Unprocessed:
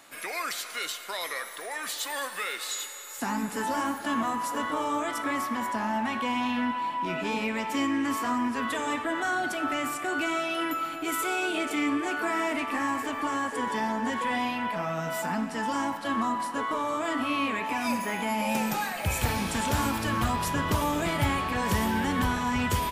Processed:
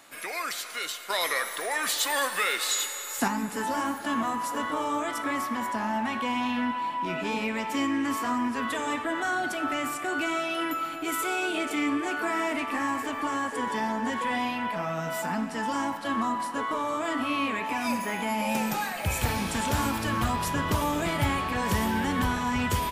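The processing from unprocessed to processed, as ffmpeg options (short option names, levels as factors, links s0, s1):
-filter_complex "[0:a]asettb=1/sr,asplit=3[s0][s1][s2];[s0]atrim=end=1.104[s3];[s1]atrim=start=1.1:end=3.28,asetpts=PTS-STARTPTS,afade=t=in:d=0.004:c=qsin,afade=t=out:st=2.176:d=0.004:c=qsin,acontrast=55[s4];[s2]atrim=start=3.276[s5];[s3][s4]acrossfade=d=0.004:c1=hsin:c2=qsin[s6];[s6][s5]acrossfade=d=0.004:c1=qsin:c2=hsin"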